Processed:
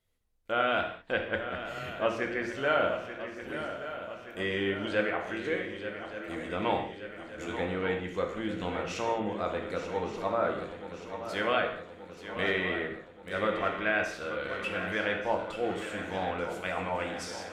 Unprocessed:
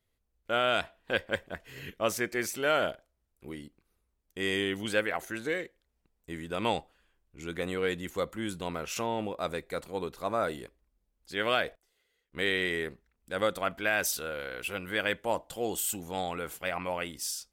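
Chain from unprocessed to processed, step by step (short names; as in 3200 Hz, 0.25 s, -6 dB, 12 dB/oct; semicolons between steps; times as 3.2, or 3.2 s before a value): de-hum 57.38 Hz, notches 7; treble ducked by the level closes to 2500 Hz, closed at -29.5 dBFS; swung echo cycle 1.177 s, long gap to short 3:1, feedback 58%, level -11 dB; non-linear reverb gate 0.23 s falling, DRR 2.5 dB; gain -1 dB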